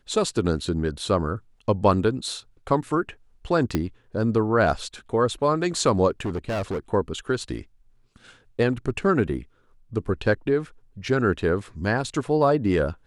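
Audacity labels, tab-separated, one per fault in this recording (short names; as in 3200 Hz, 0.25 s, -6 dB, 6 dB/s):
3.750000	3.750000	pop -10 dBFS
6.110000	6.780000	clipped -23.5 dBFS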